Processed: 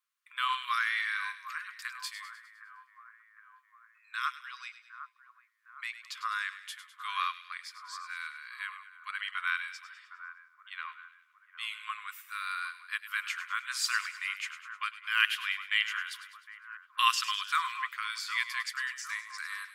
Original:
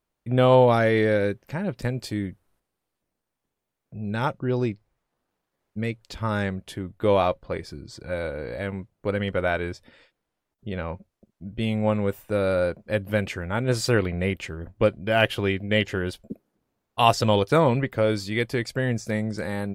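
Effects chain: brick-wall FIR high-pass 1 kHz; two-band feedback delay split 1.6 kHz, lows 759 ms, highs 102 ms, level -11.5 dB; trim -1.5 dB

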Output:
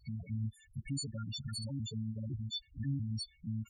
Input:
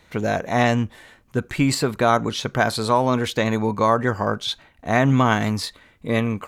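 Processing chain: partials quantised in pitch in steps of 4 st; amplifier tone stack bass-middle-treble 10-0-1; compression 2:1, threshold -53 dBFS, peak gain reduction 12.5 dB; loudest bins only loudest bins 4; time stretch by phase-locked vocoder 0.57×; trim +11.5 dB

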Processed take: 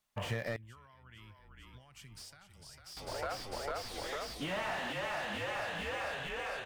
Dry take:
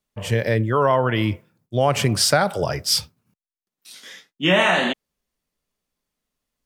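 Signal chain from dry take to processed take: resonant low shelf 590 Hz -7 dB, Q 1.5; frequency-shifting echo 450 ms, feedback 62%, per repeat -36 Hz, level -8 dB; compression 6:1, threshold -33 dBFS, peak gain reduction 18.5 dB; 0.56–2.97 s: amplifier tone stack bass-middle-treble 6-0-2; slew-rate limiter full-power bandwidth 27 Hz

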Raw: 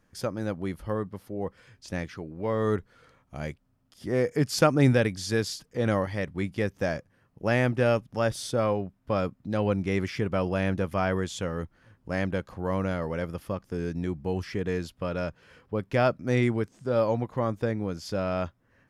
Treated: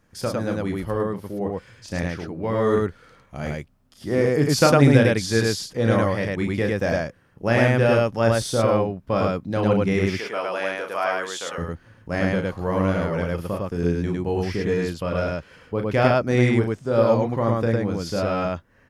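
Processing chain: 10.17–11.58 s: high-pass 640 Hz 12 dB/octave; loudspeakers at several distances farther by 12 m -6 dB, 36 m -1 dB; trim +3.5 dB

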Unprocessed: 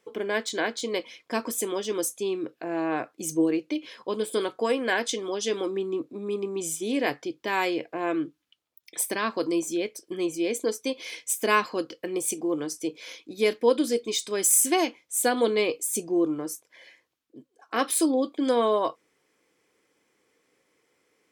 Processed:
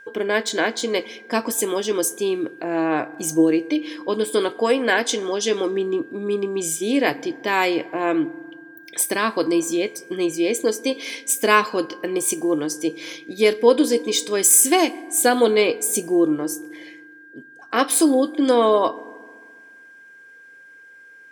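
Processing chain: whistle 1.6 kHz -49 dBFS; FDN reverb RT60 1.7 s, low-frequency decay 1.25×, high-frequency decay 0.45×, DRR 17.5 dB; trim +6.5 dB

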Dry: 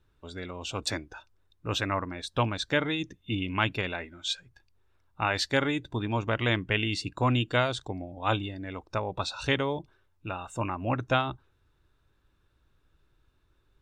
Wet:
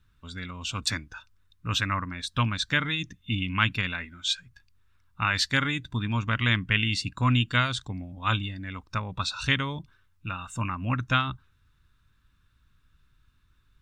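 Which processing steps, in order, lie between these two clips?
high-order bell 520 Hz -14 dB; trim +4 dB

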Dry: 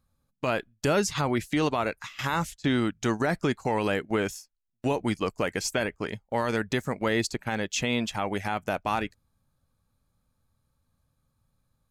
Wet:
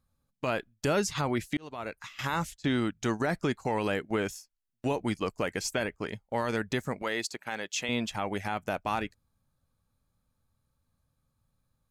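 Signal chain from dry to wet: 1.57–2.13 s: fade in; 7.02–7.89 s: high-pass 590 Hz 6 dB/octave; trim -3 dB

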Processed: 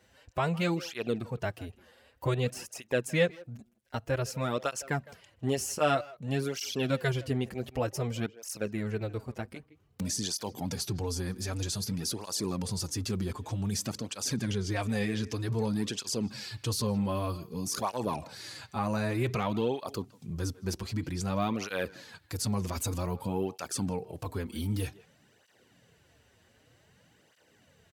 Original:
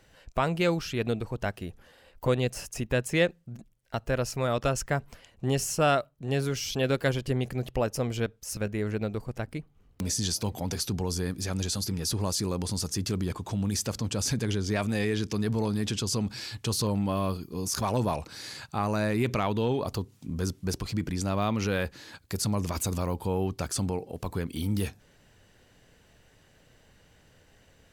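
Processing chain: high-pass 75 Hz; speakerphone echo 160 ms, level -18 dB; cancelling through-zero flanger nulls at 0.53 Hz, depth 7.3 ms

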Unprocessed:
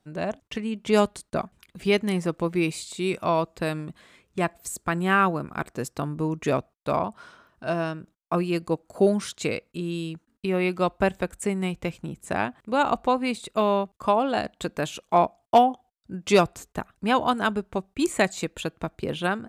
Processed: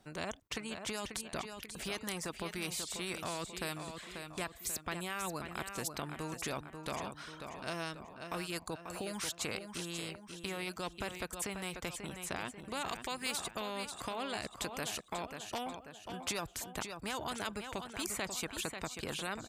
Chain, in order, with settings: peak limiter -18 dBFS, peak gain reduction 10 dB; 12.88–13.40 s: tilt shelf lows -7 dB, about 800 Hz; reverb removal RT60 0.51 s; feedback delay 539 ms, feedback 31%, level -13 dB; spectrum-flattening compressor 2:1; trim -3 dB

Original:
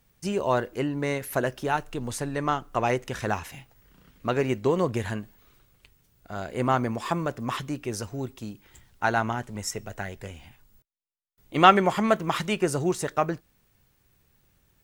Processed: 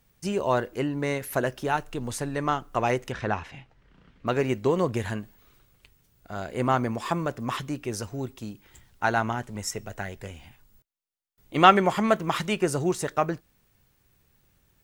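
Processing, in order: 3.12–4.27 s: low-pass 3.6 kHz 12 dB/octave

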